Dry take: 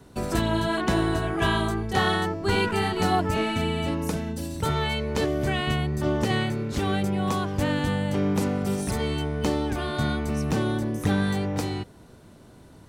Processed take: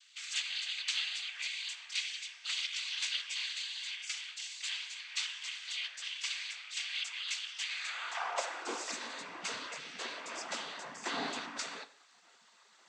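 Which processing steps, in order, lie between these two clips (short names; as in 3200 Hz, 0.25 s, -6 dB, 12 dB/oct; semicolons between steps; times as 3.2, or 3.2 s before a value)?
spectral gate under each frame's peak -20 dB weak; high-pass sweep 2800 Hz -> 200 Hz, 7.62–8.96; noise vocoder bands 16; non-linear reverb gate 0.21 s falling, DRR 11 dB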